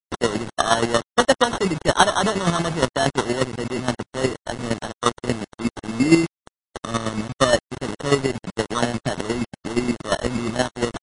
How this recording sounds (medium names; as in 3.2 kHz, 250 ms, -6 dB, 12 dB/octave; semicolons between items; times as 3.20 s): aliases and images of a low sample rate 2.4 kHz, jitter 0%; chopped level 8.5 Hz, depth 65%, duty 25%; a quantiser's noise floor 6-bit, dither none; MP3